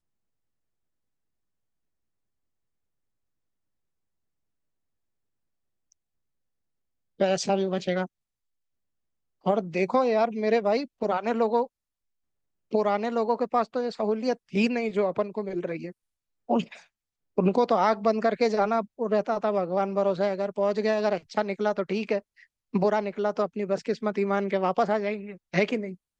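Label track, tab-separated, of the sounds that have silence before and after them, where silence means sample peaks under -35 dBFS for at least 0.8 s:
7.200000	8.060000	sound
9.460000	11.650000	sound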